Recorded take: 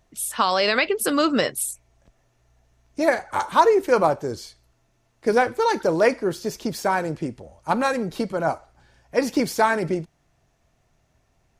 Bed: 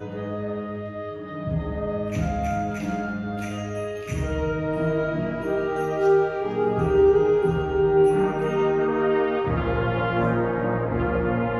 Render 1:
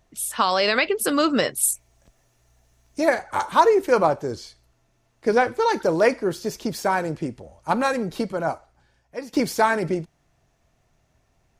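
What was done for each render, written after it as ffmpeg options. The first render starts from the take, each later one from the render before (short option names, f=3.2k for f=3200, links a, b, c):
-filter_complex "[0:a]asettb=1/sr,asplit=3[a][b][c];[a]atrim=end=1.634[d];[b]atrim=start=1.63:end=3.01,asetpts=PTS-STARTPTS,afade=t=in:d=0.004:c=qsin,afade=t=out:st=1.376:d=0.004:c=qsin,highshelf=f=5.2k:g=11[e];[c]atrim=start=3.006[f];[d][e]acrossfade=d=0.004:c1=hsin:c2=qsin[g];[g][f]acrossfade=d=0.004:c1=qsin:c2=hsin,asettb=1/sr,asplit=3[h][i][j];[h]atrim=end=3.994[k];[i]atrim=start=3.99:end=5.72,asetpts=PTS-STARTPTS,afade=t=in:d=0.004:c=qsin,afade=t=out:st=1.726:d=0.004:c=qsin,acrossover=split=7600[l][m];[m]acompressor=threshold=-57dB:ratio=4:attack=1:release=60[n];[l][n]amix=inputs=2:normalize=0[o];[j]atrim=start=5.716[p];[k][o]acrossfade=d=0.004:c1=hsin:c2=qsin[q];[q][p]acrossfade=d=0.004:c1=qsin:c2=hsin,asplit=2[r][s];[r]atrim=end=9.33,asetpts=PTS-STARTPTS,afade=t=out:st=8.2:d=1.13:silence=0.16788[t];[s]atrim=start=9.33,asetpts=PTS-STARTPTS,afade=t=in:d=0.004:c=hsin:silence=0.16788[u];[t][u]concat=n=2:v=0:a=1"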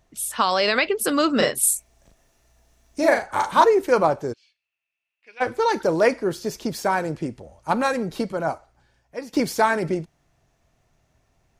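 -filter_complex "[0:a]asettb=1/sr,asplit=3[a][b][c];[a]atrim=end=1.364[d];[b]atrim=start=1.36:end=3.64,asetpts=PTS-STARTPTS,afade=t=in:d=0.004:c=qsin,afade=t=out:st=2.276:d=0.004:c=qsin,asplit=2[e][f];[f]adelay=38,volume=-3dB[g];[e][g]amix=inputs=2:normalize=0,atrim=end_sample=100548[h];[c]atrim=start=3.636[i];[d][h]acrossfade=d=0.004:c1=hsin:c2=qsin[j];[j][i]acrossfade=d=0.004:c1=qsin:c2=hsin,asplit=3[k][l][m];[k]afade=t=out:st=4.32:d=0.02[n];[l]bandpass=f=2.6k:t=q:w=8.8,afade=t=in:st=4.32:d=0.02,afade=t=out:st=5.4:d=0.02[o];[m]afade=t=in:st=5.4:d=0.02[p];[n][o][p]amix=inputs=3:normalize=0"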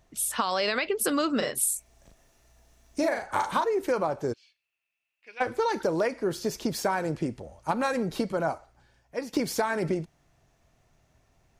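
-af "alimiter=limit=-9.5dB:level=0:latency=1:release=266,acompressor=threshold=-23dB:ratio=6"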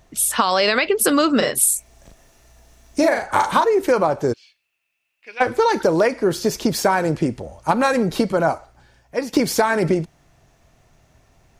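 -af "volume=9.5dB"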